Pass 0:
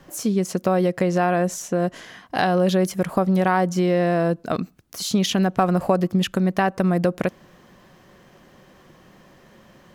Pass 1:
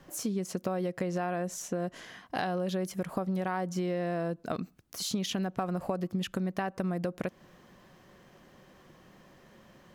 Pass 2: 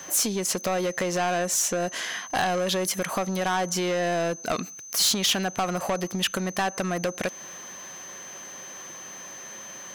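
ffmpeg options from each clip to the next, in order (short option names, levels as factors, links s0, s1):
-af "acompressor=threshold=0.0631:ratio=3,volume=0.501"
-filter_complex "[0:a]aeval=exprs='val(0)+0.00126*sin(2*PI*6200*n/s)':c=same,asplit=2[s0][s1];[s1]highpass=f=720:p=1,volume=8.91,asoftclip=type=tanh:threshold=0.133[s2];[s0][s2]amix=inputs=2:normalize=0,lowpass=f=1600:p=1,volume=0.501,crystalizer=i=7:c=0"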